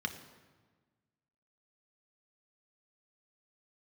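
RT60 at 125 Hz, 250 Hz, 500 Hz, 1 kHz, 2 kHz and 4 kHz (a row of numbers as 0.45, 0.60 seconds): 1.8, 1.7, 1.4, 1.4, 1.2, 1.0 seconds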